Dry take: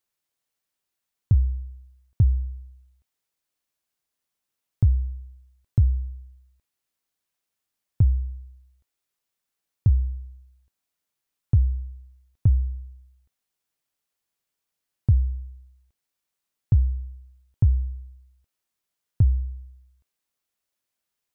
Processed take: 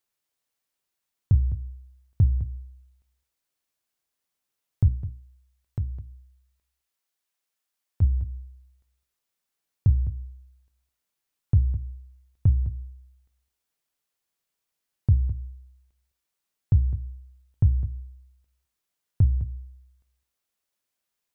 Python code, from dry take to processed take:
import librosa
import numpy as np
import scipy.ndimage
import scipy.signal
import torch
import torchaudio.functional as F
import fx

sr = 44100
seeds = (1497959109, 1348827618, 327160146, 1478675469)

y = fx.low_shelf(x, sr, hz=330.0, db=-10.0, at=(4.88, 8.02))
y = fx.hum_notches(y, sr, base_hz=60, count=5)
y = y + 10.0 ** (-13.5 / 20.0) * np.pad(y, (int(208 * sr / 1000.0), 0))[:len(y)]